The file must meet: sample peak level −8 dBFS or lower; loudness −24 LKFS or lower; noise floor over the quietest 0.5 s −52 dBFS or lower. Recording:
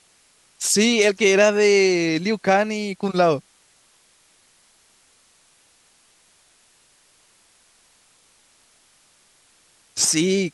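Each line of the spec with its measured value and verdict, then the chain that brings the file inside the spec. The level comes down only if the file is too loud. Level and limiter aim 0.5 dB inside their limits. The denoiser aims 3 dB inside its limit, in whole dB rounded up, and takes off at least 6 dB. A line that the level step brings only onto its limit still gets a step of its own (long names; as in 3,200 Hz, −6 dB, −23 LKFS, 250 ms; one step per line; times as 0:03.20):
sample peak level −4.5 dBFS: out of spec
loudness −18.5 LKFS: out of spec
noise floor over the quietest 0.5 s −58 dBFS: in spec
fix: level −6 dB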